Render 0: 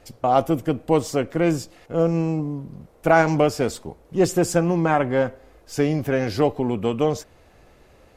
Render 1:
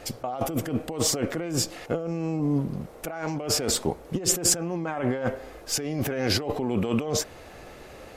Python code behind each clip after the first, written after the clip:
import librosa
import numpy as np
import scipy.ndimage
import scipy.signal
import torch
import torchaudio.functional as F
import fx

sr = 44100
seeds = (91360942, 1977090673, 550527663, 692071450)

y = fx.notch(x, sr, hz=990.0, q=22.0)
y = fx.over_compress(y, sr, threshold_db=-29.0, ratio=-1.0)
y = fx.low_shelf(y, sr, hz=160.0, db=-7.5)
y = F.gain(torch.from_numpy(y), 3.0).numpy()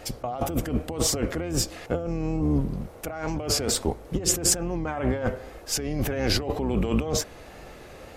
y = fx.octave_divider(x, sr, octaves=2, level_db=-2.0)
y = fx.wow_flutter(y, sr, seeds[0], rate_hz=2.1, depth_cents=50.0)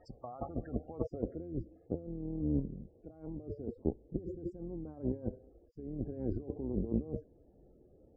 y = fx.cheby_harmonics(x, sr, harmonics=(3,), levels_db=(-11,), full_scale_db=-8.5)
y = fx.spec_topn(y, sr, count=32)
y = fx.filter_sweep_lowpass(y, sr, from_hz=2600.0, to_hz=360.0, start_s=0.24, end_s=1.47, q=1.4)